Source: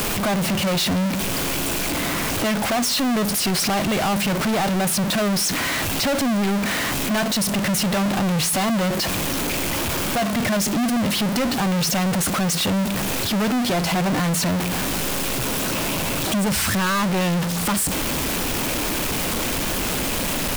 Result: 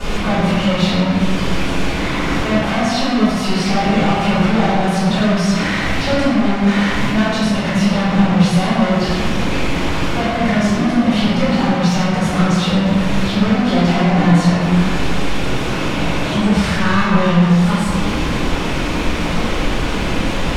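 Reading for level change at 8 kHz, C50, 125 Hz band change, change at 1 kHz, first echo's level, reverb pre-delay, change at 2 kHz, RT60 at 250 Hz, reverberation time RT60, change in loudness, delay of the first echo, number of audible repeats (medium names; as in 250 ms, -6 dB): -8.0 dB, -3.5 dB, +8.5 dB, +5.5 dB, no echo, 3 ms, +4.5 dB, 2.2 s, 1.7 s, +5.0 dB, no echo, no echo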